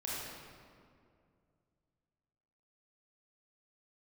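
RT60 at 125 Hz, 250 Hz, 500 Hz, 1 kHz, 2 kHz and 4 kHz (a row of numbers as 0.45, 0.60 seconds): 3.2, 2.7, 2.5, 2.1, 1.7, 1.3 seconds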